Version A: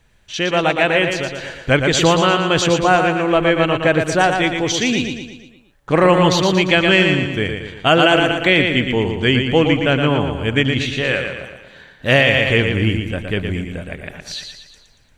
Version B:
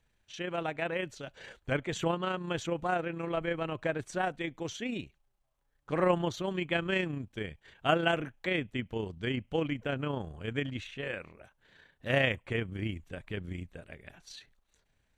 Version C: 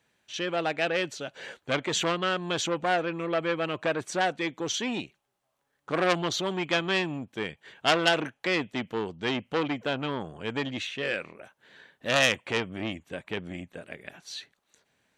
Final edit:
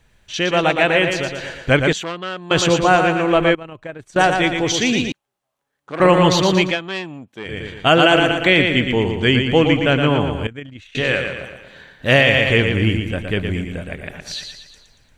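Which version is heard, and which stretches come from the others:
A
0:01.93–0:02.51: punch in from C
0:03.55–0:04.16: punch in from B
0:05.12–0:06.00: punch in from C
0:06.71–0:07.51: punch in from C, crossfade 0.16 s
0:10.47–0:10.95: punch in from B

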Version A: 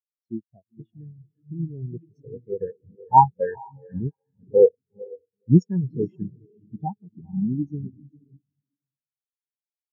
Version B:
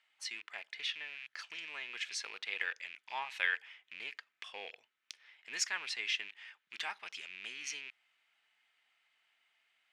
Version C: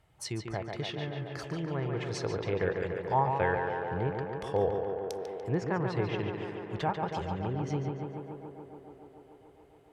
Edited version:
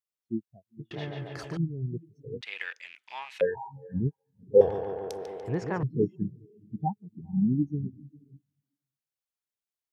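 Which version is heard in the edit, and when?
A
0:00.91–0:01.57: punch in from C
0:02.41–0:03.41: punch in from B
0:04.61–0:05.83: punch in from C

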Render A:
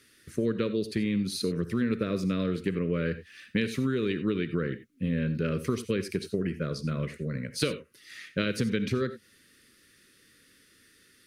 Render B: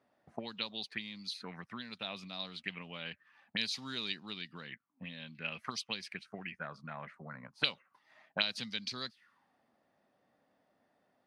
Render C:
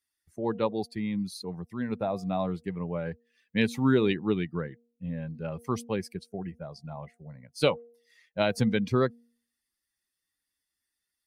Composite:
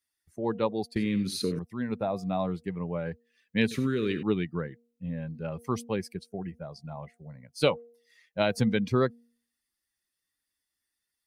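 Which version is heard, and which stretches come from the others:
C
0:00.96–0:01.59: punch in from A
0:03.71–0:04.23: punch in from A
not used: B

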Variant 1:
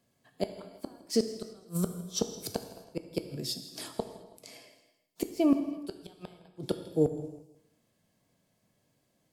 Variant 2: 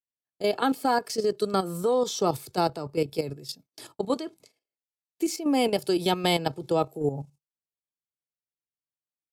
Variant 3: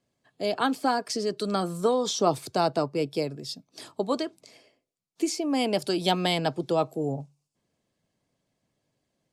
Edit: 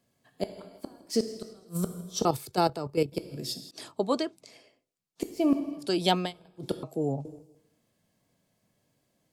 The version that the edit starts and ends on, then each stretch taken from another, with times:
1
0:02.25–0:03.12: punch in from 2
0:03.71–0:05.22: punch in from 3
0:05.85–0:06.25: punch in from 3, crossfade 0.16 s
0:06.83–0:07.25: punch in from 3

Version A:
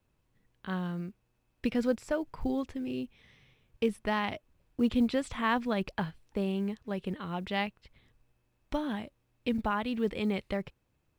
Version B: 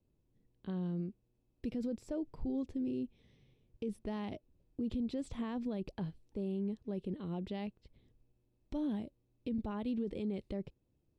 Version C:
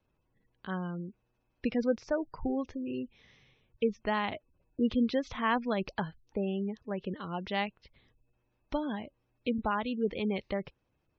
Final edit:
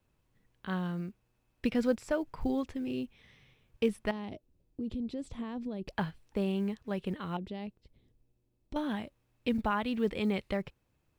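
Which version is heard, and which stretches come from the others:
A
0:04.11–0:05.88: punch in from B
0:07.37–0:08.76: punch in from B
not used: C

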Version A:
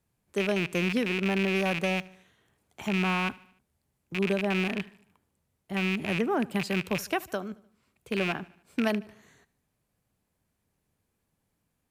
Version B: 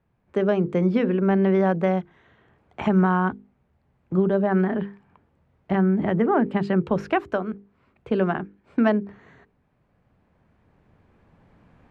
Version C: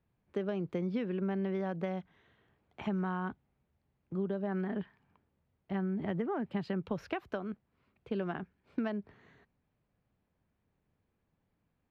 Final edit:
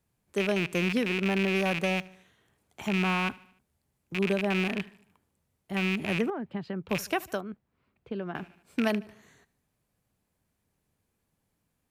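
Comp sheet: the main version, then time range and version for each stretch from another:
A
0:06.30–0:06.89: punch in from C
0:07.41–0:08.35: punch in from C
not used: B

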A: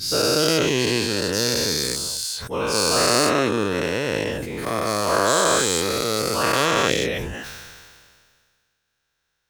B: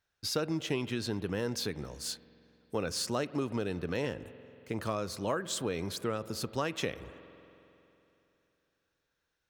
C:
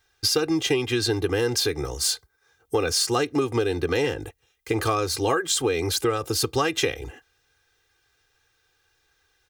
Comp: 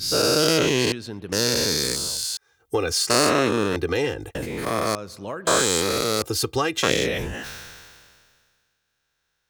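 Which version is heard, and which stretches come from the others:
A
0:00.92–0:01.32: punch in from B
0:02.37–0:03.10: punch in from C
0:03.76–0:04.35: punch in from C
0:04.95–0:05.47: punch in from B
0:06.22–0:06.83: punch in from C

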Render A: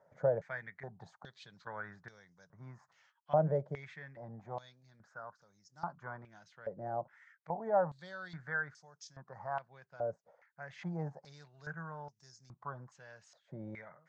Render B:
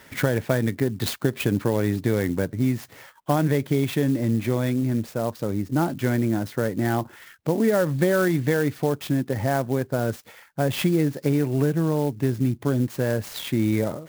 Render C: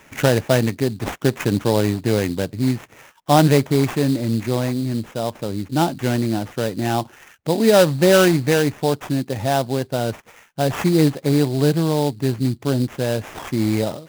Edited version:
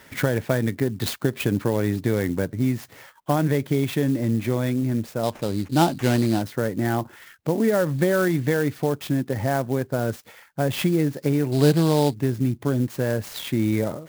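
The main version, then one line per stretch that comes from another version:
B
0:05.23–0:06.42: punch in from C
0:11.52–0:12.14: punch in from C
not used: A

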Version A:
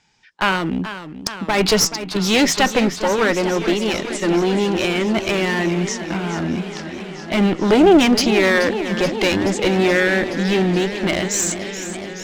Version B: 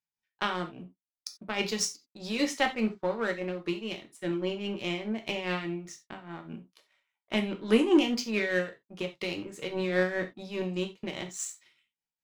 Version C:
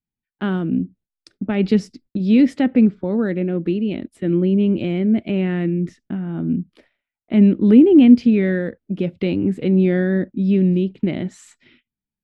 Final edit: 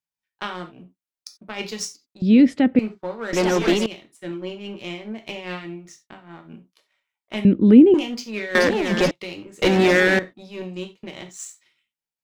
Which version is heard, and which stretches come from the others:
B
0:02.22–0:02.79: punch in from C
0:03.33–0:03.86: punch in from A
0:07.45–0:07.94: punch in from C
0:08.55–0:09.11: punch in from A
0:09.62–0:10.19: punch in from A

